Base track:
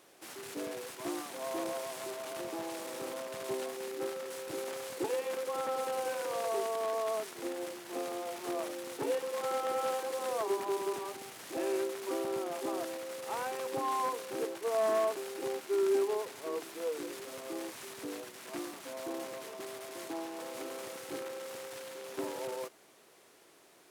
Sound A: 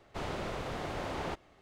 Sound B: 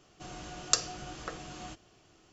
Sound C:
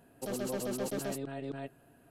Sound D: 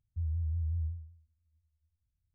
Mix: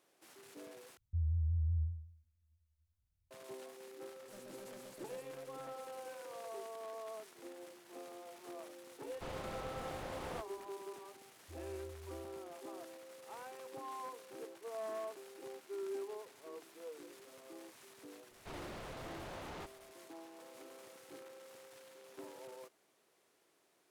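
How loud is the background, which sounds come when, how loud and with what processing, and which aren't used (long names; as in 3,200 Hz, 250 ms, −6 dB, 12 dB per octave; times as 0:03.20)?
base track −13 dB
0:00.97: overwrite with D −1 dB
0:04.06: mix in C −15 dB + brickwall limiter −33 dBFS
0:09.06: mix in A −8 dB
0:11.32: mix in D −15 dB + resonant band-pass 180 Hz, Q 0.96
0:18.31: mix in A −6.5 dB + hard clipping −38.5 dBFS
not used: B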